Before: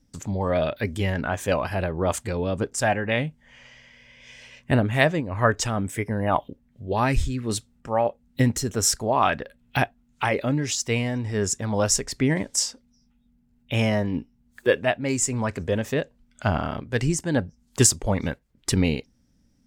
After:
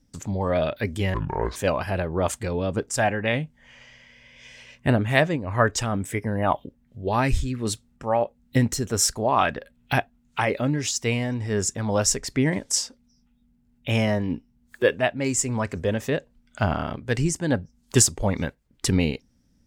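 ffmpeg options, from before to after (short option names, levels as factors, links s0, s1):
-filter_complex "[0:a]asplit=3[s0][s1][s2];[s0]atrim=end=1.144[s3];[s1]atrim=start=1.14:end=1.4,asetpts=PTS-STARTPTS,asetrate=27342,aresample=44100[s4];[s2]atrim=start=1.396[s5];[s3][s4]acrossfade=d=0.004:c1=hsin:c2=hsin[s6];[s6][s5]acrossfade=d=0.004:c1=hsin:c2=hsin"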